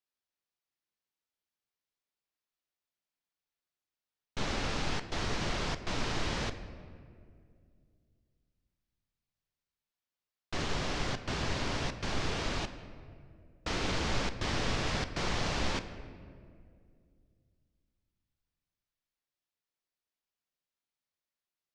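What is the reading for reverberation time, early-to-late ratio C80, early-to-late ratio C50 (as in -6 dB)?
2.2 s, 12.0 dB, 11.0 dB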